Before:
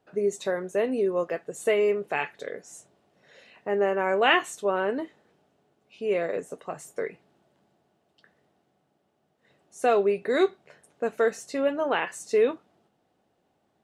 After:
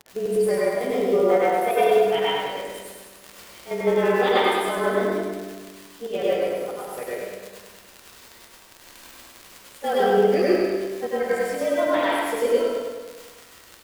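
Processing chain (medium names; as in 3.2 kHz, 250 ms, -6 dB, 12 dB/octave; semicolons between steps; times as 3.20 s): frequency axis rescaled in octaves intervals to 108%; in parallel at -0.5 dB: peak limiter -20.5 dBFS, peak gain reduction 7.5 dB; 1.23–1.74 s: on the sum: high-order bell 1.1 kHz +11.5 dB; feedback comb 97 Hz, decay 1.8 s, mix 70%; crackle 80 per s -33 dBFS; square tremolo 6.2 Hz, depth 65%, duty 60%; feedback delay 103 ms, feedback 56%, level -4 dB; reverberation RT60 0.70 s, pre-delay 84 ms, DRR -5 dB; 6.08–6.91 s: upward expansion 1.5:1, over -26 dBFS; trim +4.5 dB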